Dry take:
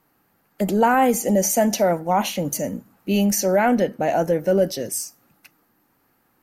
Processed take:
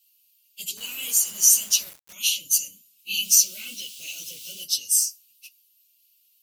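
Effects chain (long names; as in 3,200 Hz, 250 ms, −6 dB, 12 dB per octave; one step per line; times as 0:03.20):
random phases in long frames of 50 ms
0:03.23–0:04.63: background noise pink −44 dBFS
elliptic high-pass filter 2,800 Hz, stop band 40 dB
0:00.77–0:02.13: bit-depth reduction 8 bits, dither none
level +8 dB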